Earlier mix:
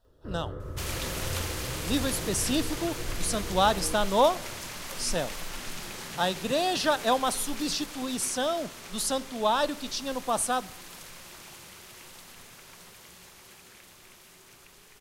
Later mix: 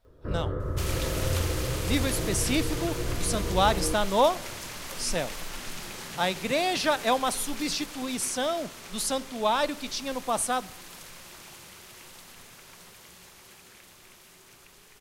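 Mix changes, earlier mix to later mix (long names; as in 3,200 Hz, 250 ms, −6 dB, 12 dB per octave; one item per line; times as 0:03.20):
speech: remove Butterworth band-reject 2,200 Hz, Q 3
first sound +7.0 dB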